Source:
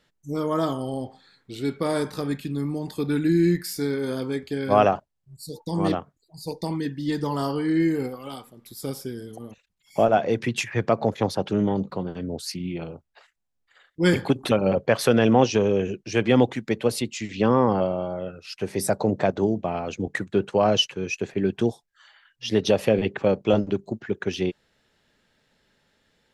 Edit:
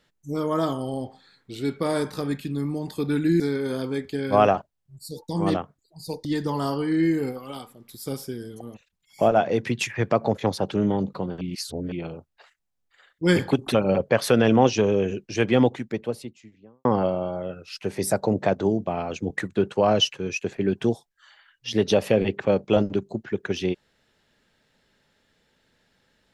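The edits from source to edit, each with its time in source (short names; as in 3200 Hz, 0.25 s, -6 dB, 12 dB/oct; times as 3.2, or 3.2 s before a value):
3.4–3.78 cut
6.63–7.02 cut
12.18–12.69 reverse
16.15–17.62 studio fade out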